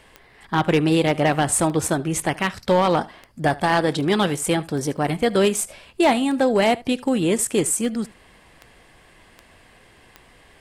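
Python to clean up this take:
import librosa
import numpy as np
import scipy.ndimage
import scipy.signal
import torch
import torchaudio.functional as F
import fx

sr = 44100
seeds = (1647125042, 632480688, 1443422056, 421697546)

y = fx.fix_declip(x, sr, threshold_db=-10.5)
y = fx.fix_declick_ar(y, sr, threshold=10.0)
y = fx.fix_interpolate(y, sr, at_s=(4.97,), length_ms=6.6)
y = fx.fix_echo_inverse(y, sr, delay_ms=75, level_db=-22.0)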